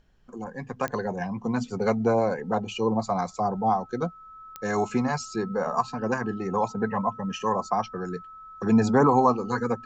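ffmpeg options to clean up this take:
ffmpeg -i in.wav -af "adeclick=threshold=4,bandreject=frequency=1300:width=30,agate=range=-21dB:threshold=-37dB" out.wav

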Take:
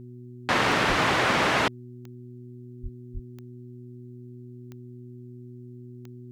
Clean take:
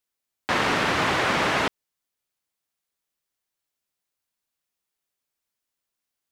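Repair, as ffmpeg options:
ffmpeg -i in.wav -filter_complex "[0:a]adeclick=threshold=4,bandreject=frequency=122.7:width_type=h:width=4,bandreject=frequency=245.4:width_type=h:width=4,bandreject=frequency=368.1:width_type=h:width=4,asplit=3[link_01][link_02][link_03];[link_01]afade=type=out:start_time=0.88:duration=0.02[link_04];[link_02]highpass=frequency=140:width=0.5412,highpass=frequency=140:width=1.3066,afade=type=in:start_time=0.88:duration=0.02,afade=type=out:start_time=1:duration=0.02[link_05];[link_03]afade=type=in:start_time=1:duration=0.02[link_06];[link_04][link_05][link_06]amix=inputs=3:normalize=0,asplit=3[link_07][link_08][link_09];[link_07]afade=type=out:start_time=2.82:duration=0.02[link_10];[link_08]highpass=frequency=140:width=0.5412,highpass=frequency=140:width=1.3066,afade=type=in:start_time=2.82:duration=0.02,afade=type=out:start_time=2.94:duration=0.02[link_11];[link_09]afade=type=in:start_time=2.94:duration=0.02[link_12];[link_10][link_11][link_12]amix=inputs=3:normalize=0,asplit=3[link_13][link_14][link_15];[link_13]afade=type=out:start_time=3.13:duration=0.02[link_16];[link_14]highpass=frequency=140:width=0.5412,highpass=frequency=140:width=1.3066,afade=type=in:start_time=3.13:duration=0.02,afade=type=out:start_time=3.25:duration=0.02[link_17];[link_15]afade=type=in:start_time=3.25:duration=0.02[link_18];[link_16][link_17][link_18]amix=inputs=3:normalize=0" out.wav

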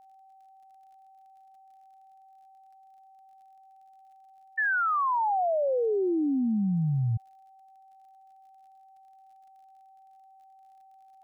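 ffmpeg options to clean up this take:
ffmpeg -i in.wav -af "adeclick=threshold=4,bandreject=frequency=770:width=30" out.wav

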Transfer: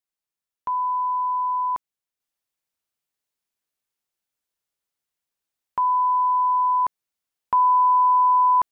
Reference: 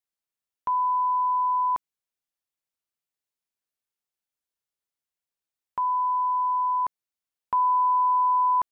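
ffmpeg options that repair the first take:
ffmpeg -i in.wav -af "asetnsamples=nb_out_samples=441:pad=0,asendcmd='2.2 volume volume -4.5dB',volume=0dB" out.wav

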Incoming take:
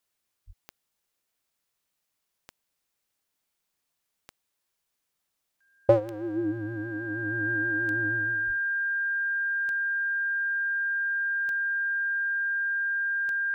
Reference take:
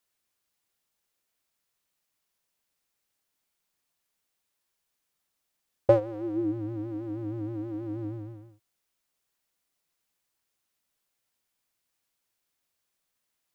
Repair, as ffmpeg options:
ffmpeg -i in.wav -filter_complex "[0:a]adeclick=threshold=4,bandreject=frequency=1600:width=30,asplit=3[link_01][link_02][link_03];[link_01]afade=type=out:start_time=0.46:duration=0.02[link_04];[link_02]highpass=frequency=140:width=0.5412,highpass=frequency=140:width=1.3066,afade=type=in:start_time=0.46:duration=0.02,afade=type=out:start_time=0.58:duration=0.02[link_05];[link_03]afade=type=in:start_time=0.58:duration=0.02[link_06];[link_04][link_05][link_06]amix=inputs=3:normalize=0,asplit=3[link_07][link_08][link_09];[link_07]afade=type=out:start_time=8.46:duration=0.02[link_10];[link_08]highpass=frequency=140:width=0.5412,highpass=frequency=140:width=1.3066,afade=type=in:start_time=8.46:duration=0.02,afade=type=out:start_time=8.58:duration=0.02[link_11];[link_09]afade=type=in:start_time=8.58:duration=0.02[link_12];[link_10][link_11][link_12]amix=inputs=3:normalize=0" out.wav

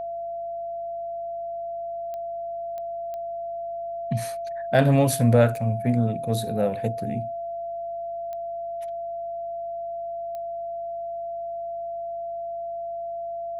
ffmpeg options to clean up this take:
ffmpeg -i in.wav -af "adeclick=threshold=4,bandreject=frequency=52.6:width_type=h:width=4,bandreject=frequency=105.2:width_type=h:width=4,bandreject=frequency=157.8:width_type=h:width=4,bandreject=frequency=210.4:width_type=h:width=4,bandreject=frequency=680:width=30" out.wav

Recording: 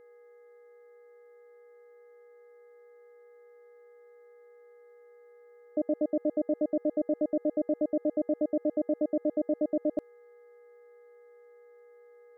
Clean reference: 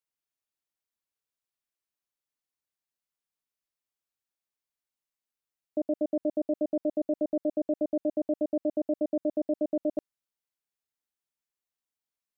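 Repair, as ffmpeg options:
ffmpeg -i in.wav -af "bandreject=frequency=415.2:width_type=h:width=4,bandreject=frequency=830.4:width_type=h:width=4,bandreject=frequency=1245.6:width_type=h:width=4,bandreject=frequency=1660.8:width_type=h:width=4,bandreject=frequency=2076:width_type=h:width=4,bandreject=frequency=480:width=30" out.wav

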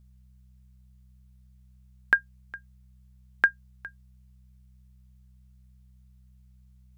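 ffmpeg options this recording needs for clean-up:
ffmpeg -i in.wav -af "bandreject=frequency=63.3:width_type=h:width=4,bandreject=frequency=126.6:width_type=h:width=4,bandreject=frequency=189.9:width_type=h:width=4" out.wav

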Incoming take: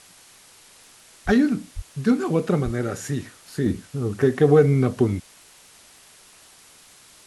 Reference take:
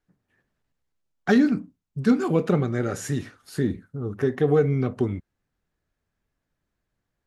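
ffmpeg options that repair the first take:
ffmpeg -i in.wav -filter_complex "[0:a]adeclick=threshold=4,asplit=3[link_01][link_02][link_03];[link_01]afade=type=out:start_time=1.25:duration=0.02[link_04];[link_02]highpass=frequency=140:width=0.5412,highpass=frequency=140:width=1.3066,afade=type=in:start_time=1.25:duration=0.02,afade=type=out:start_time=1.37:duration=0.02[link_05];[link_03]afade=type=in:start_time=1.37:duration=0.02[link_06];[link_04][link_05][link_06]amix=inputs=3:normalize=0,asplit=3[link_07][link_08][link_09];[link_07]afade=type=out:start_time=1.75:duration=0.02[link_10];[link_08]highpass=frequency=140:width=0.5412,highpass=frequency=140:width=1.3066,afade=type=in:start_time=1.75:duration=0.02,afade=type=out:start_time=1.87:duration=0.02[link_11];[link_09]afade=type=in:start_time=1.87:duration=0.02[link_12];[link_10][link_11][link_12]amix=inputs=3:normalize=0,asplit=3[link_13][link_14][link_15];[link_13]afade=type=out:start_time=2.64:duration=0.02[link_16];[link_14]highpass=frequency=140:width=0.5412,highpass=frequency=140:width=1.3066,afade=type=in:start_time=2.64:duration=0.02,afade=type=out:start_time=2.76:duration=0.02[link_17];[link_15]afade=type=in:start_time=2.76:duration=0.02[link_18];[link_16][link_17][link_18]amix=inputs=3:normalize=0,afwtdn=0.004,asetnsamples=nb_out_samples=441:pad=0,asendcmd='3.66 volume volume -4.5dB',volume=0dB" out.wav

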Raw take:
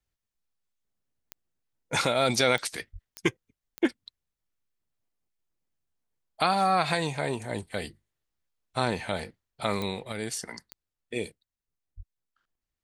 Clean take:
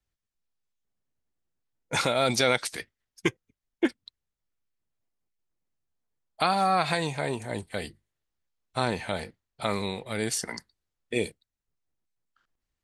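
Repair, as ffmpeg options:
ffmpeg -i in.wav -filter_complex "[0:a]adeclick=threshold=4,asplit=3[link_01][link_02][link_03];[link_01]afade=type=out:start_time=2.92:duration=0.02[link_04];[link_02]highpass=frequency=140:width=0.5412,highpass=frequency=140:width=1.3066,afade=type=in:start_time=2.92:duration=0.02,afade=type=out:start_time=3.04:duration=0.02[link_05];[link_03]afade=type=in:start_time=3.04:duration=0.02[link_06];[link_04][link_05][link_06]amix=inputs=3:normalize=0,asplit=3[link_07][link_08][link_09];[link_07]afade=type=out:start_time=11.96:duration=0.02[link_10];[link_08]highpass=frequency=140:width=0.5412,highpass=frequency=140:width=1.3066,afade=type=in:start_time=11.96:duration=0.02,afade=type=out:start_time=12.08:duration=0.02[link_11];[link_09]afade=type=in:start_time=12.08:duration=0.02[link_12];[link_10][link_11][link_12]amix=inputs=3:normalize=0,asetnsamples=nb_out_samples=441:pad=0,asendcmd='10.12 volume volume 4.5dB',volume=0dB" out.wav

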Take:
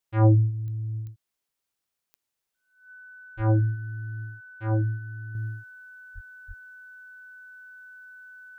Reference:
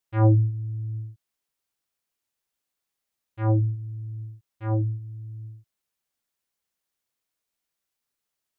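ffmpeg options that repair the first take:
ffmpeg -i in.wav -filter_complex "[0:a]adeclick=threshold=4,bandreject=frequency=1500:width=30,asplit=3[link_01][link_02][link_03];[link_01]afade=type=out:start_time=3.36:duration=0.02[link_04];[link_02]highpass=frequency=140:width=0.5412,highpass=frequency=140:width=1.3066,afade=type=in:start_time=3.36:duration=0.02,afade=type=out:start_time=3.48:duration=0.02[link_05];[link_03]afade=type=in:start_time=3.48:duration=0.02[link_06];[link_04][link_05][link_06]amix=inputs=3:normalize=0,asplit=3[link_07][link_08][link_09];[link_07]afade=type=out:start_time=6.14:duration=0.02[link_10];[link_08]highpass=frequency=140:width=0.5412,highpass=frequency=140:width=1.3066,afade=type=in:start_time=6.14:duration=0.02,afade=type=out:start_time=6.26:duration=0.02[link_11];[link_09]afade=type=in:start_time=6.26:duration=0.02[link_12];[link_10][link_11][link_12]amix=inputs=3:normalize=0,asplit=3[link_13][link_14][link_15];[link_13]afade=type=out:start_time=6.47:duration=0.02[link_16];[link_14]highpass=frequency=140:width=0.5412,highpass=frequency=140:width=1.3066,afade=type=in:start_time=6.47:duration=0.02,afade=type=out:start_time=6.59:duration=0.02[link_17];[link_15]afade=type=in:start_time=6.59:duration=0.02[link_18];[link_16][link_17][link_18]amix=inputs=3:normalize=0,asetnsamples=nb_out_samples=441:pad=0,asendcmd='5.35 volume volume -7dB',volume=0dB" out.wav

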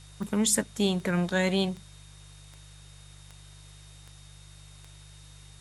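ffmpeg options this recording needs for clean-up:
ffmpeg -i in.wav -af "adeclick=threshold=4,bandreject=frequency=49.6:width_type=h:width=4,bandreject=frequency=99.2:width_type=h:width=4,bandreject=frequency=148.8:width_type=h:width=4,bandreject=frequency=3700:width=30,afftdn=noise_reduction=24:noise_floor=-50" out.wav

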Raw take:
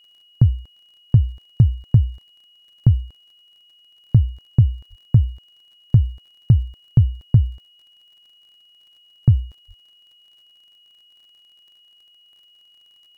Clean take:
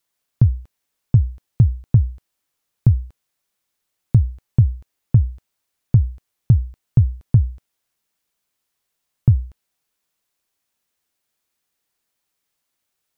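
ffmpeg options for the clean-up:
ffmpeg -i in.wav -filter_complex "[0:a]adeclick=threshold=4,bandreject=frequency=2900:width=30,asplit=3[link_01][link_02][link_03];[link_01]afade=type=out:start_time=4.89:duration=0.02[link_04];[link_02]highpass=frequency=140:width=0.5412,highpass=frequency=140:width=1.3066,afade=type=in:start_time=4.89:duration=0.02,afade=type=out:start_time=5.01:duration=0.02[link_05];[link_03]afade=type=in:start_time=5.01:duration=0.02[link_06];[link_04][link_05][link_06]amix=inputs=3:normalize=0,asplit=3[link_07][link_08][link_09];[link_07]afade=type=out:start_time=9.67:duration=0.02[link_10];[link_08]highpass=frequency=140:width=0.5412,highpass=frequency=140:width=1.3066,afade=type=in:start_time=9.67:duration=0.02,afade=type=out:start_time=9.79:duration=0.02[link_11];[link_09]afade=type=in:start_time=9.79:duration=0.02[link_12];[link_10][link_11][link_12]amix=inputs=3:normalize=0" out.wav

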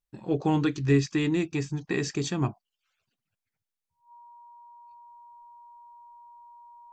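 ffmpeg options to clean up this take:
ffmpeg -i in.wav -af "bandreject=frequency=950:width=30" out.wav

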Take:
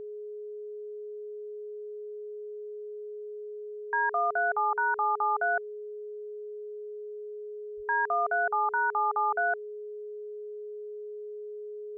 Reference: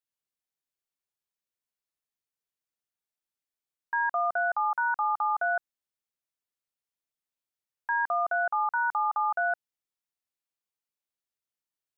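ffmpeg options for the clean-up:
ffmpeg -i in.wav -filter_complex "[0:a]bandreject=frequency=420:width=30,asplit=3[link_01][link_02][link_03];[link_01]afade=type=out:start_time=7.76:duration=0.02[link_04];[link_02]highpass=frequency=140:width=0.5412,highpass=frequency=140:width=1.3066,afade=type=in:start_time=7.76:duration=0.02,afade=type=out:start_time=7.88:duration=0.02[link_05];[link_03]afade=type=in:start_time=7.88:duration=0.02[link_06];[link_04][link_05][link_06]amix=inputs=3:normalize=0,agate=range=-21dB:threshold=-32dB" out.wav

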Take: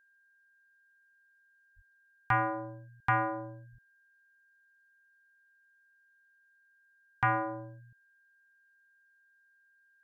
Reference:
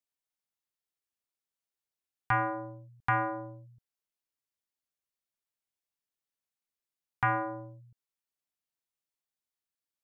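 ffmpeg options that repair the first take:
ffmpeg -i in.wav -filter_complex "[0:a]bandreject=frequency=1600:width=30,asplit=3[link_01][link_02][link_03];[link_01]afade=type=out:start_time=1.75:duration=0.02[link_04];[link_02]highpass=frequency=140:width=0.5412,highpass=frequency=140:width=1.3066,afade=type=in:start_time=1.75:duration=0.02,afade=type=out:start_time=1.87:duration=0.02[link_05];[link_03]afade=type=in:start_time=1.87:duration=0.02[link_06];[link_04][link_05][link_06]amix=inputs=3:normalize=0,asplit=3[link_07][link_08][link_09];[link_07]afade=type=out:start_time=3.71:duration=0.02[link_10];[link_08]highpass=frequency=140:width=0.5412,highpass=frequency=140:width=1.3066,afade=type=in:start_time=3.71:duration=0.02,afade=type=out:start_time=3.83:duration=0.02[link_11];[link_09]afade=type=in:start_time=3.83:duration=0.02[link_12];[link_10][link_11][link_12]amix=inputs=3:normalize=0" out.wav

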